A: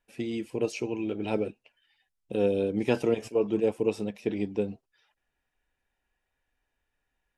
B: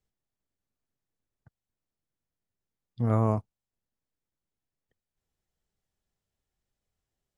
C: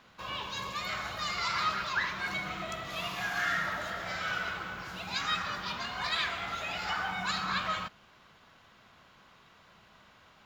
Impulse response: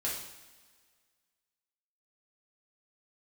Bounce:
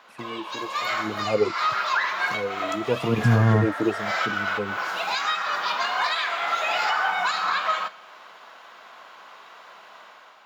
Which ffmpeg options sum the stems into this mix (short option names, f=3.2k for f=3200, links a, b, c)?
-filter_complex "[0:a]aphaser=in_gain=1:out_gain=1:delay=3.6:decay=0.69:speed=0.93:type=triangular,tremolo=f=0.58:d=0.88,volume=-3.5dB,asplit=2[a][b];[1:a]adelay=250,volume=0.5dB[c];[2:a]highpass=450,alimiter=level_in=3.5dB:limit=-24dB:level=0:latency=1:release=411,volume=-3.5dB,volume=2.5dB,asplit=2[d][e];[e]volume=-16.5dB[f];[b]apad=whole_len=460976[g];[d][g]sidechaincompress=threshold=-48dB:ratio=3:attack=28:release=136[h];[a][c]amix=inputs=2:normalize=0,asubboost=boost=4:cutoff=240,alimiter=limit=-17dB:level=0:latency=1:release=300,volume=0dB[i];[3:a]atrim=start_sample=2205[j];[f][j]afir=irnorm=-1:irlink=0[k];[h][i][k]amix=inputs=3:normalize=0,highpass=f=100:w=0.5412,highpass=f=100:w=1.3066,equalizer=f=860:w=0.63:g=6.5,dynaudnorm=f=500:g=3:m=6dB"